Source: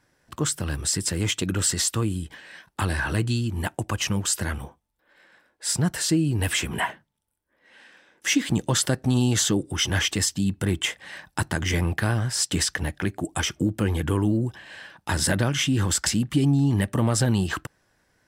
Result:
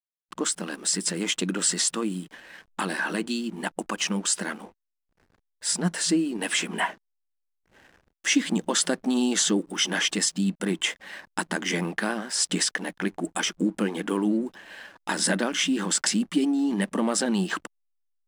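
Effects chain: FFT band-pass 170–11000 Hz; backlash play -44.5 dBFS

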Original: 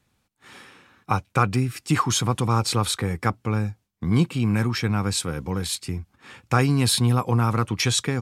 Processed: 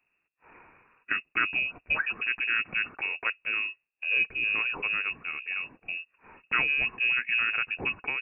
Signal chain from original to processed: inverted band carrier 2700 Hz; gain -7 dB

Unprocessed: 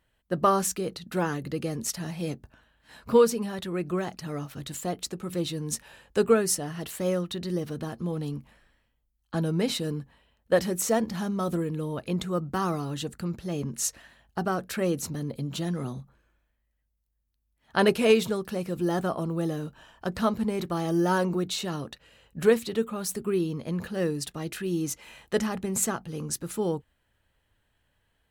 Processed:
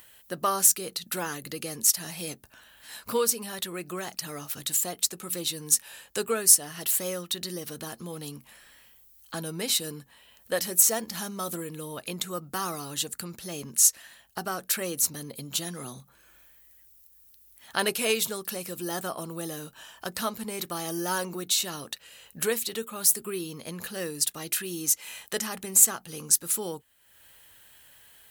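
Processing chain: high shelf 7400 Hz +8.5 dB; in parallel at +3 dB: compressor, threshold -35 dBFS, peak gain reduction 19 dB; on the sum: tilt +3 dB/oct; upward compressor, threshold -37 dBFS; gain -6 dB

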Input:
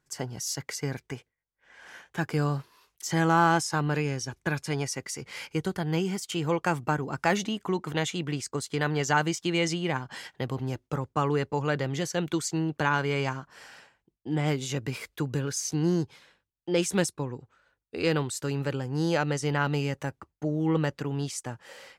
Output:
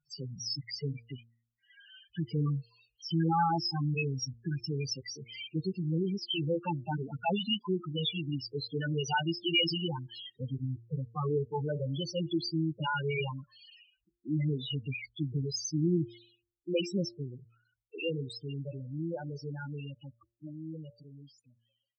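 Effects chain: ending faded out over 5.86 s; band shelf 3600 Hz +12 dB 1.3 oct; loudest bins only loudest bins 4; de-hum 115.9 Hz, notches 5; gain -1.5 dB

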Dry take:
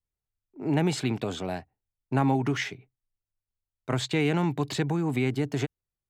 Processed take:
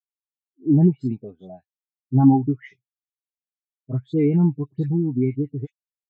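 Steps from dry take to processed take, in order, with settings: dispersion highs, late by 92 ms, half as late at 2000 Hz; spectral expander 2.5:1; gain +7.5 dB

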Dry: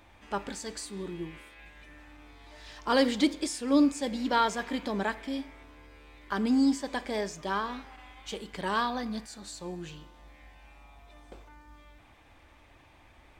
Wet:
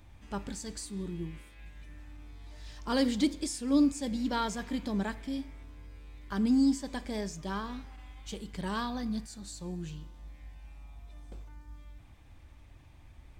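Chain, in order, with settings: tone controls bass +15 dB, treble +7 dB; gain -7.5 dB

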